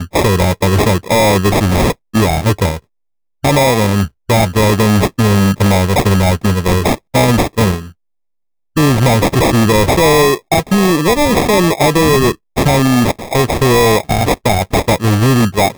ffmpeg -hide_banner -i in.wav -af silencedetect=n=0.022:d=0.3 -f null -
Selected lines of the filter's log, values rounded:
silence_start: 2.79
silence_end: 3.44 | silence_duration: 0.65
silence_start: 7.91
silence_end: 8.76 | silence_duration: 0.85